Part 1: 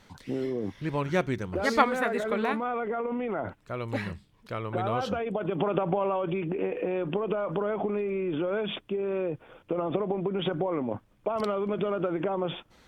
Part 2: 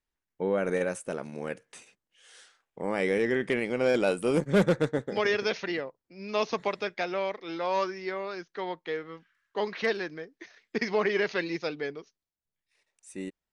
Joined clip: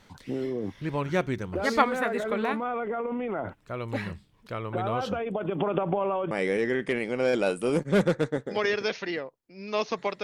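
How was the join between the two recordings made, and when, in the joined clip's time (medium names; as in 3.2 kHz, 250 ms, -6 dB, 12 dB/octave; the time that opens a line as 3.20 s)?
part 1
6.31 s: go over to part 2 from 2.92 s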